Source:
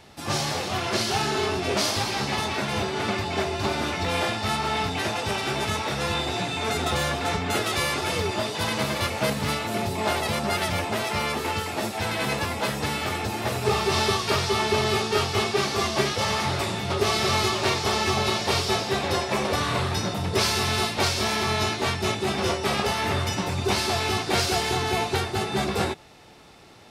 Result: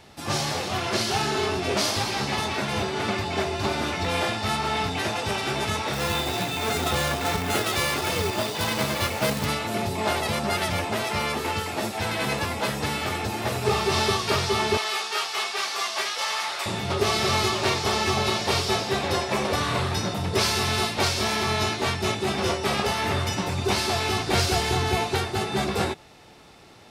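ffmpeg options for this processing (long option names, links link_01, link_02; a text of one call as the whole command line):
ffmpeg -i in.wav -filter_complex "[0:a]asettb=1/sr,asplit=3[link_01][link_02][link_03];[link_01]atrim=end=5.934[link_04];[link_02]atrim=start=5.93:end=9.46,asetpts=PTS-STARTPTS,afade=type=in:duration=0.004:curve=qsin,afade=type=out:start_time=3.526:duration=0.004:curve=qsin,acrusher=bits=2:mode=log:mix=0:aa=0.000001[link_05];[link_03]atrim=start=9.456[link_06];[link_04][link_05]acrossfade=duration=0.004:curve1=hsin:curve2=qsin[link_07];[link_07][link_06]acrossfade=duration=0.004:curve1=qsin:curve2=hsin,asettb=1/sr,asplit=3[link_08][link_09][link_10];[link_08]atrim=end=14.774[link_11];[link_09]atrim=start=14.77:end=16.66,asetpts=PTS-STARTPTS,afade=type=in:duration=0.004:curve=qsin,afade=type=out:start_time=1.886:duration=0.004:curve=qsin,highpass=890[link_12];[link_10]atrim=start=16.656[link_13];[link_11][link_12]acrossfade=duration=0.004:curve1=hsin:curve2=qsin[link_14];[link_14][link_13]acrossfade=duration=0.004:curve1=qsin:curve2=hsin,asettb=1/sr,asplit=3[link_15][link_16][link_17];[link_15]atrim=end=24.194[link_18];[link_16]atrim=start=24.19:end=24.97,asetpts=PTS-STARTPTS,afade=type=in:duration=0.004:curve=qsin,afade=type=out:start_time=0.776:duration=0.004:curve=qsin,lowshelf=frequency=86:gain=11[link_19];[link_17]atrim=start=24.966[link_20];[link_18][link_19]acrossfade=duration=0.004:curve1=hsin:curve2=qsin[link_21];[link_21][link_20]acrossfade=duration=0.004:curve1=qsin:curve2=hsin" out.wav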